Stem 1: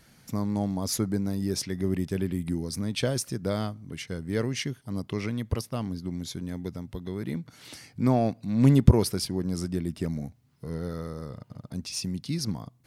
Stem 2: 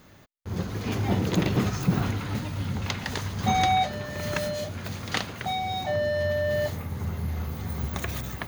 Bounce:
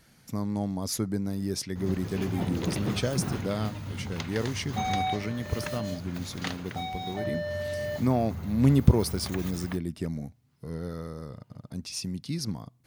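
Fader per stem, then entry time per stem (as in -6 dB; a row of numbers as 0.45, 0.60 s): -2.0, -6.5 dB; 0.00, 1.30 s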